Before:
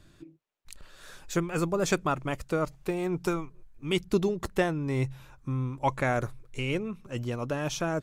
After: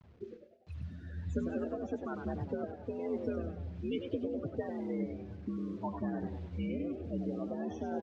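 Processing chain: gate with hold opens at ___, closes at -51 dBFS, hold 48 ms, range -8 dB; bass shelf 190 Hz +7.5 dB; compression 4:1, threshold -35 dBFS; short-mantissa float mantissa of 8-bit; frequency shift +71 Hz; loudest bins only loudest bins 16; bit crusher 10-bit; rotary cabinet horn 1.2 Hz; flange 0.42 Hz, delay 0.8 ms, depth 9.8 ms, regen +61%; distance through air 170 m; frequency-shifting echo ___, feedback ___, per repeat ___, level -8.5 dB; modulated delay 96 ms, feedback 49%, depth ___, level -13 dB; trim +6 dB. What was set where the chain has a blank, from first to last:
-44 dBFS, 99 ms, 39%, +92 Hz, 166 cents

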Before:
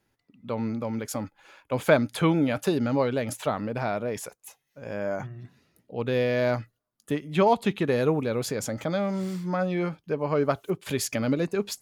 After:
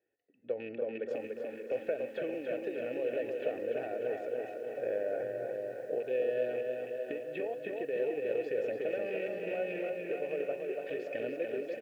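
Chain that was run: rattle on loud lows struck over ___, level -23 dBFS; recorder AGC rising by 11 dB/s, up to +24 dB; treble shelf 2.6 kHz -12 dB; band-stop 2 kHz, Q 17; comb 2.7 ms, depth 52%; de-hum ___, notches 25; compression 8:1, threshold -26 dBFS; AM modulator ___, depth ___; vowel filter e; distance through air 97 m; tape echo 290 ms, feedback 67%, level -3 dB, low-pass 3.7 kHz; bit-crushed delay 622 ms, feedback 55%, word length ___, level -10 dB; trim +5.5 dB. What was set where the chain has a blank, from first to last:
-30 dBFS, 265.2 Hz, 45 Hz, 15%, 11-bit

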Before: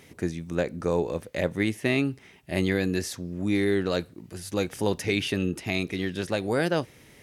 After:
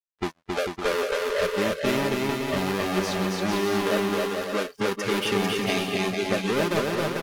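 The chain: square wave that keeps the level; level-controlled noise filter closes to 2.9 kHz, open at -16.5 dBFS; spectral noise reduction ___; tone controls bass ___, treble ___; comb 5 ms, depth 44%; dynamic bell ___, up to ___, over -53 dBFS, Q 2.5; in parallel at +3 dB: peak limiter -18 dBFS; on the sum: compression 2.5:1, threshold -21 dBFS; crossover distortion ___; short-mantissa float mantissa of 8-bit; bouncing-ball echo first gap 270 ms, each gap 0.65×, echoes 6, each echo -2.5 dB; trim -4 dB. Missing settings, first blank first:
27 dB, -7 dB, -4 dB, 7.9 kHz, -4 dB, -50 dBFS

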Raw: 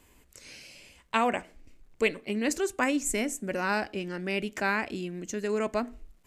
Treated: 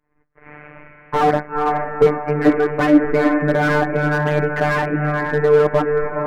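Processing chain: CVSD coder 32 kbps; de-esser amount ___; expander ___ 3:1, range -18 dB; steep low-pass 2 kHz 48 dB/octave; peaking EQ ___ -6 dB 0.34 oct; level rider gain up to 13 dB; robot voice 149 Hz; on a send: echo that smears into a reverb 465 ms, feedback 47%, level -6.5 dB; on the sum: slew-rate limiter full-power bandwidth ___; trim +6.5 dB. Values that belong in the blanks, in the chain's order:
100%, -51 dBFS, 81 Hz, 89 Hz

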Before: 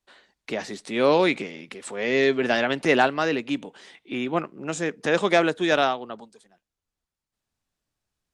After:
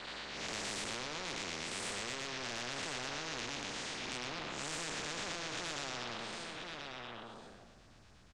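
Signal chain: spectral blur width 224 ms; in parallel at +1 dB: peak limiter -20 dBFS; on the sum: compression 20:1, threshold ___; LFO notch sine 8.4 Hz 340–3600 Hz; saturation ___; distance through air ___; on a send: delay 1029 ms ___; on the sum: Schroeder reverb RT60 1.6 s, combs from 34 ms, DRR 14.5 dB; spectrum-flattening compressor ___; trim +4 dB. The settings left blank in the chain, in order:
-26 dBFS, -31.5 dBFS, 110 m, -16 dB, 4:1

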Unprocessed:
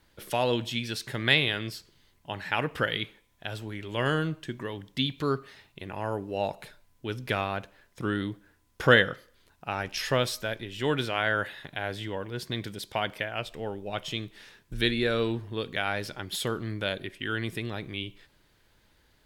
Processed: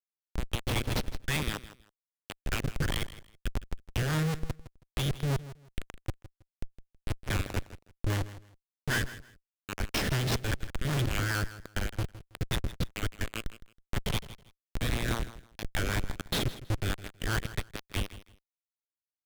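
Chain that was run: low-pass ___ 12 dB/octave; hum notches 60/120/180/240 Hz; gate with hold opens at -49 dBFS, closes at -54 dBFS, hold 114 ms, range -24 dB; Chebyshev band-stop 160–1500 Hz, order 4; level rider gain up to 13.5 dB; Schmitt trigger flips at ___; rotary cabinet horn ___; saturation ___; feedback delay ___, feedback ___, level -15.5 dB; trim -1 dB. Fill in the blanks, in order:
7 kHz, -19.5 dBFS, 5 Hz, -16.5 dBFS, 161 ms, 22%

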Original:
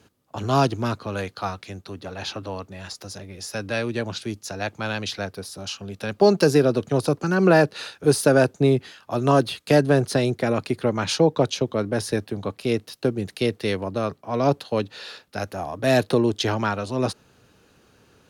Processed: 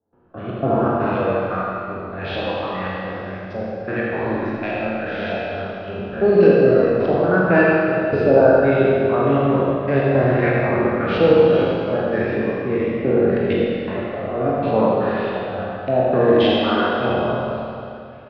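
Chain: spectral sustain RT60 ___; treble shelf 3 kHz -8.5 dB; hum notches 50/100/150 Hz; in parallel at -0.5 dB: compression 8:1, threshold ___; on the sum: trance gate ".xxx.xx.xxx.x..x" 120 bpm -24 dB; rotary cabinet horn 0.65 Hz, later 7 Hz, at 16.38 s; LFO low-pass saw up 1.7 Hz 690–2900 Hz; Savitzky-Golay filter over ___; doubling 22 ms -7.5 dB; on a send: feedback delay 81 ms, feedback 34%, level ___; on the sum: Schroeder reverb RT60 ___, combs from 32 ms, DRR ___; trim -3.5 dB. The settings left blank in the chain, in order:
1.28 s, -31 dBFS, 15 samples, -8 dB, 2.6 s, -4 dB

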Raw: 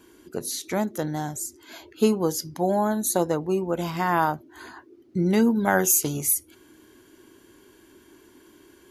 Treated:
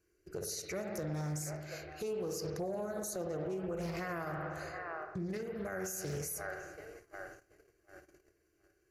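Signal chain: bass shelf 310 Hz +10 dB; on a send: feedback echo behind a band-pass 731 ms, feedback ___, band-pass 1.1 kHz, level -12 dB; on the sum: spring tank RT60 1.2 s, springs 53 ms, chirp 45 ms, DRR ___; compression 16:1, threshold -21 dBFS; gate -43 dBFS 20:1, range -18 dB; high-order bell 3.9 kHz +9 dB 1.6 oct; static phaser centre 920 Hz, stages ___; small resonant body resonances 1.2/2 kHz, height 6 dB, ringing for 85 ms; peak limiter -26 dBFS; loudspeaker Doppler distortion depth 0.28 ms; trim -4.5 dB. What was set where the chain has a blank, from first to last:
43%, 5 dB, 6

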